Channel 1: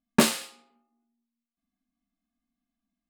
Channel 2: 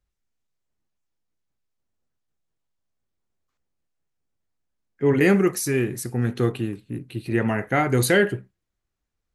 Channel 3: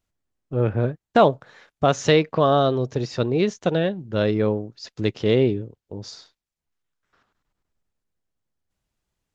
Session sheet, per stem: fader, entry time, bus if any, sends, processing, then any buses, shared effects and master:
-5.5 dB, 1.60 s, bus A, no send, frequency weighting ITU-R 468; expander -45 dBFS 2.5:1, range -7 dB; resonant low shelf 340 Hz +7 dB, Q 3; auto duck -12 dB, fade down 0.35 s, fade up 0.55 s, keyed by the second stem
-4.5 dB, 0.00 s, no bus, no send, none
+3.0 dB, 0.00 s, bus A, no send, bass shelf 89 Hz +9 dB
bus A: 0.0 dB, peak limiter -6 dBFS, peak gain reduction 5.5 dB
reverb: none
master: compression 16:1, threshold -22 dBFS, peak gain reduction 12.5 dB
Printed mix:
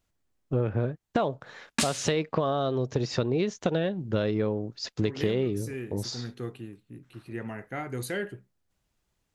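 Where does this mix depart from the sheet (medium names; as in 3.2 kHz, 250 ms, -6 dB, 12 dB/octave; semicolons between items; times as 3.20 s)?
stem 2 -4.5 dB -> -14.0 dB; stem 3: missing bass shelf 89 Hz +9 dB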